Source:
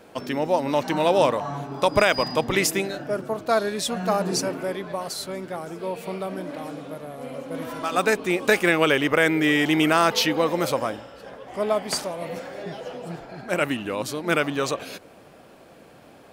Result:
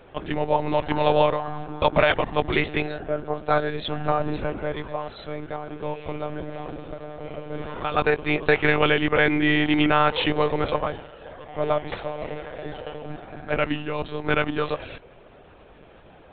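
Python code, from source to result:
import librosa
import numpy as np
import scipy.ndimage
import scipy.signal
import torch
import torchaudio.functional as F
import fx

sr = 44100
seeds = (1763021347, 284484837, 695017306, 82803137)

y = fx.lpc_monotone(x, sr, seeds[0], pitch_hz=150.0, order=16)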